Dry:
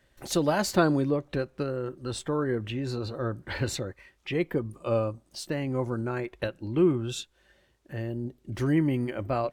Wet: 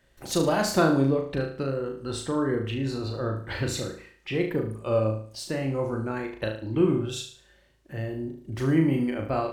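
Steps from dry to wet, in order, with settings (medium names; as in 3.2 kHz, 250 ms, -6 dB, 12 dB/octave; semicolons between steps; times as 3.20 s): flutter echo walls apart 6.3 m, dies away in 0.48 s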